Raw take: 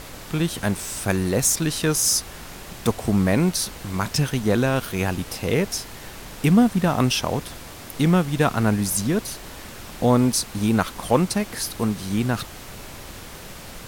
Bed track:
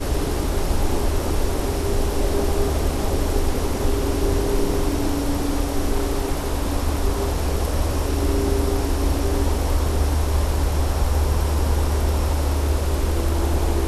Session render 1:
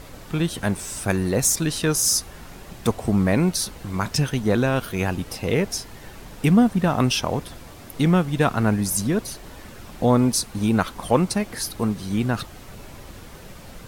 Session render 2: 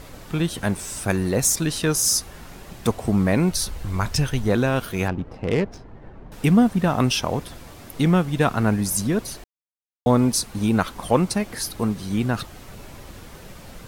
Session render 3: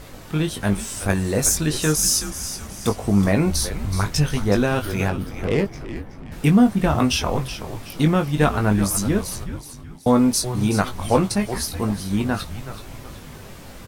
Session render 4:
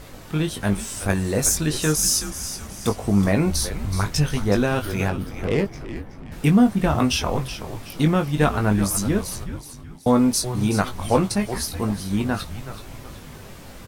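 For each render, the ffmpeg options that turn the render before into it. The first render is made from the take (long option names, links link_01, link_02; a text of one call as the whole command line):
ffmpeg -i in.wav -af "afftdn=noise_reduction=7:noise_floor=-39" out.wav
ffmpeg -i in.wav -filter_complex "[0:a]asplit=3[link_01][link_02][link_03];[link_01]afade=type=out:start_time=3.5:duration=0.02[link_04];[link_02]asubboost=boost=5:cutoff=85,afade=type=in:start_time=3.5:duration=0.02,afade=type=out:start_time=4.48:duration=0.02[link_05];[link_03]afade=type=in:start_time=4.48:duration=0.02[link_06];[link_04][link_05][link_06]amix=inputs=3:normalize=0,asettb=1/sr,asplit=3[link_07][link_08][link_09];[link_07]atrim=end=5.084[link_10];[link_08]atrim=start=5.08:end=6.32,asetpts=PTS-STARTPTS,afade=type=in:duration=0.004:curve=qsin,afade=type=out:start_time=1.236:duration=0.004:curve=qsin,adynamicsmooth=sensitivity=1.5:basefreq=990[link_11];[link_09]atrim=start=6.316[link_12];[link_10][link_11]acrossfade=duration=0.004:curve1=hsin:curve2=qsin[link_13];[link_13][link_12]acrossfade=duration=0.004:curve1=qsin:curve2=hsin,asplit=3[link_14][link_15][link_16];[link_14]atrim=end=9.44,asetpts=PTS-STARTPTS,afade=type=out:start_time=9.436:duration=0.004:curve=hsin[link_17];[link_15]atrim=start=9.44:end=10.06,asetpts=PTS-STARTPTS,volume=0[link_18];[link_16]atrim=start=10.06,asetpts=PTS-STARTPTS,afade=type=in:duration=0.004:curve=hsin[link_19];[link_17][link_18][link_19]concat=n=3:v=0:a=1" out.wav
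ffmpeg -i in.wav -filter_complex "[0:a]asplit=2[link_01][link_02];[link_02]adelay=20,volume=-6dB[link_03];[link_01][link_03]amix=inputs=2:normalize=0,asplit=2[link_04][link_05];[link_05]asplit=4[link_06][link_07][link_08][link_09];[link_06]adelay=374,afreqshift=-120,volume=-11dB[link_10];[link_07]adelay=748,afreqshift=-240,volume=-18.5dB[link_11];[link_08]adelay=1122,afreqshift=-360,volume=-26.1dB[link_12];[link_09]adelay=1496,afreqshift=-480,volume=-33.6dB[link_13];[link_10][link_11][link_12][link_13]amix=inputs=4:normalize=0[link_14];[link_04][link_14]amix=inputs=2:normalize=0" out.wav
ffmpeg -i in.wav -af "volume=-1dB" out.wav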